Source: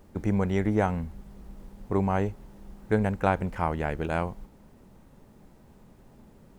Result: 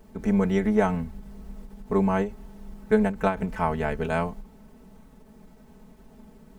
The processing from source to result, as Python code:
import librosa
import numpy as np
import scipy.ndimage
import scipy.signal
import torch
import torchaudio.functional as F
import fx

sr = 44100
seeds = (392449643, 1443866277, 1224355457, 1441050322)

y = x + 0.95 * np.pad(x, (int(4.6 * sr / 1000.0), 0))[:len(x)]
y = fx.end_taper(y, sr, db_per_s=170.0)